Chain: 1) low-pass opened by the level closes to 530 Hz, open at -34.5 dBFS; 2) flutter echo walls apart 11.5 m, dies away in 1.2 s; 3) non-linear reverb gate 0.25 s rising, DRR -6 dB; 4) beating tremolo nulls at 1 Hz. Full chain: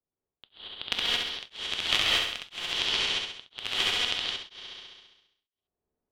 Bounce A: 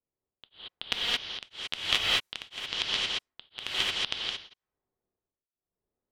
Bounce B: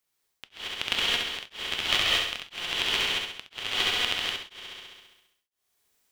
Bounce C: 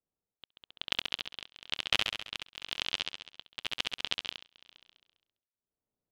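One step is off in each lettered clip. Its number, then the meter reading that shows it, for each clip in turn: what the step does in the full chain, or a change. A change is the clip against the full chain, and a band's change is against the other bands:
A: 2, momentary loudness spread change -3 LU; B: 1, 4 kHz band -1.5 dB; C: 3, momentary loudness spread change -3 LU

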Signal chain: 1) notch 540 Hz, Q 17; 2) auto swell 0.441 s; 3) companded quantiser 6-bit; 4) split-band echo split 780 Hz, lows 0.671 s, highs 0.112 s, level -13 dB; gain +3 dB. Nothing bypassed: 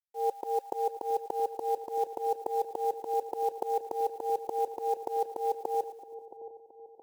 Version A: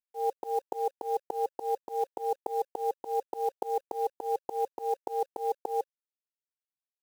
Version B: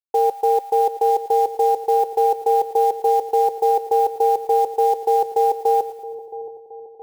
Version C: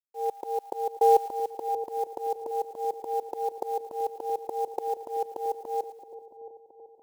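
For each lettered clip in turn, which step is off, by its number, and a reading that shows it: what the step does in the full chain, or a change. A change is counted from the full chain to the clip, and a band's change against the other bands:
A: 4, echo-to-direct -11.5 dB to none; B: 2, crest factor change -5.5 dB; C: 1, 250 Hz band -3.0 dB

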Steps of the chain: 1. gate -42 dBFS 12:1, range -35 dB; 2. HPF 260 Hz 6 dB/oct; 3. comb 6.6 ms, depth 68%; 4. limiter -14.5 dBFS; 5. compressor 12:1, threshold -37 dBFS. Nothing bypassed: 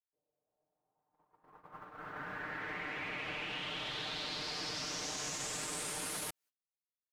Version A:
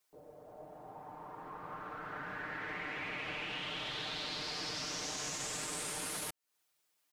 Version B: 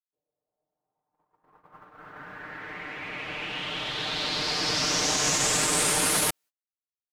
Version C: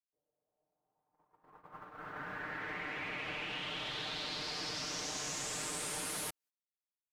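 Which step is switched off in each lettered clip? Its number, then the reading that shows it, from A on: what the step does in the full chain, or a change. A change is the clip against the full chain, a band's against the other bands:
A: 1, momentary loudness spread change +6 LU; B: 5, mean gain reduction 8.5 dB; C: 4, crest factor change +1.5 dB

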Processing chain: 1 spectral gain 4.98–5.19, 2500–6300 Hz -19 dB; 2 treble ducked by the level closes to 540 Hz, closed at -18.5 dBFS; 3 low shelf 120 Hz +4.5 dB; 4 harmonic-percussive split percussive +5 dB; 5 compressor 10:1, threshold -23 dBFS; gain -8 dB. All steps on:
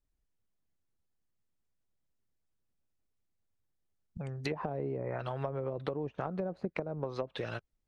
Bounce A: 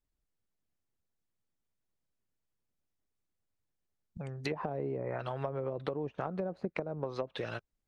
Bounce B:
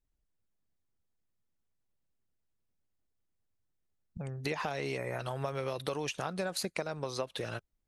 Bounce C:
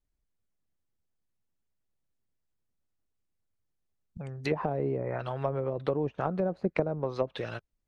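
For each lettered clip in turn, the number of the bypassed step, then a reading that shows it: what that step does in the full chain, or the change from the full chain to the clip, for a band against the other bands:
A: 3, 125 Hz band -1.5 dB; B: 2, 4 kHz band +9.0 dB; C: 5, mean gain reduction 4.0 dB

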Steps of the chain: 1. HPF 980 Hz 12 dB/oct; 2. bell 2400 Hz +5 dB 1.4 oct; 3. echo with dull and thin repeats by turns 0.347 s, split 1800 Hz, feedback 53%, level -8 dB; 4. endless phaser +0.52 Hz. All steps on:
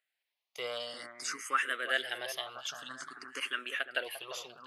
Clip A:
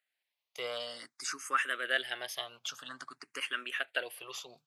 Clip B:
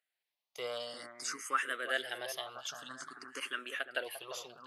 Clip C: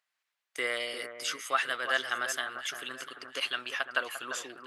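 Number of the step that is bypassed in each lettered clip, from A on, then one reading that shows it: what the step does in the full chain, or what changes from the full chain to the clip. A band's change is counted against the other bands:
3, momentary loudness spread change +1 LU; 2, 4 kHz band -3.0 dB; 4, crest factor change -2.0 dB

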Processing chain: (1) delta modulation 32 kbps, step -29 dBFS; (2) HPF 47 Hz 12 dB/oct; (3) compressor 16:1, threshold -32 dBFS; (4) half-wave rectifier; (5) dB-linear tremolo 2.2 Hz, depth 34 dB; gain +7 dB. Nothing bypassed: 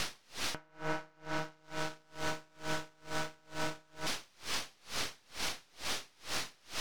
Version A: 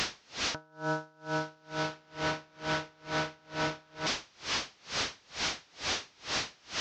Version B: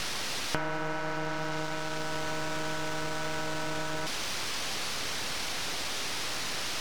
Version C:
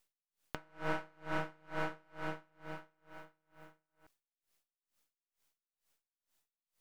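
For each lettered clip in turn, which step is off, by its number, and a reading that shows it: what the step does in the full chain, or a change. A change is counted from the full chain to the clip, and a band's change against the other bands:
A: 4, crest factor change -3.0 dB; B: 5, crest factor change +4.0 dB; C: 1, 8 kHz band -22.0 dB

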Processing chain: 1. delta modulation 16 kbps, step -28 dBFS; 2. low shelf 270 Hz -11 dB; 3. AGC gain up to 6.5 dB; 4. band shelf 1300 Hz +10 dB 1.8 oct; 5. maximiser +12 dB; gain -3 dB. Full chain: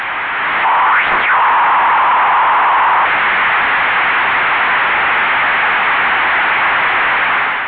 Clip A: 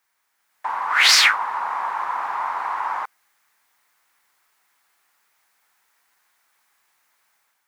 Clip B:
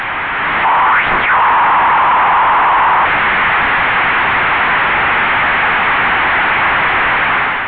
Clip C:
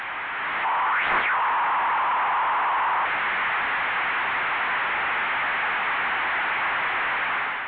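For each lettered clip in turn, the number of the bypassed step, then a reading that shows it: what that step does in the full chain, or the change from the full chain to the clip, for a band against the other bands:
1, 4 kHz band +14.5 dB; 2, 250 Hz band +5.0 dB; 5, crest factor change +5.0 dB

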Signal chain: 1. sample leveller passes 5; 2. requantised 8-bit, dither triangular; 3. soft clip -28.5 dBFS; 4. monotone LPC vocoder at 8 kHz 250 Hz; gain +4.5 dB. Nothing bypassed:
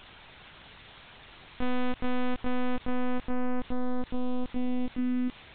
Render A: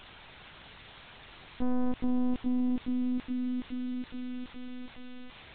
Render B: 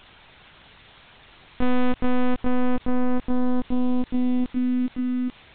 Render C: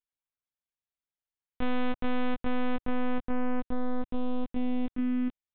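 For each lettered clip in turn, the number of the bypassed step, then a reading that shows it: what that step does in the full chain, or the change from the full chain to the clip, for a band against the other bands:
1, crest factor change +3.0 dB; 3, distortion -14 dB; 2, distortion -22 dB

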